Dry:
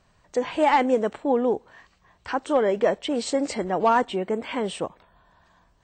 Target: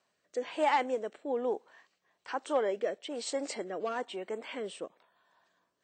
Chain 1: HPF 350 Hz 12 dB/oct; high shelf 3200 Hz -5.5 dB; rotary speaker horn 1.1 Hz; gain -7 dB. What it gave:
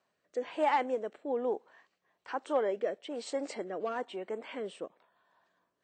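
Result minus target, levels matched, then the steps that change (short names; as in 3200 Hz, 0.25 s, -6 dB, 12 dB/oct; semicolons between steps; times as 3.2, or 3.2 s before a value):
8000 Hz band -7.0 dB
change: high shelf 3200 Hz +3 dB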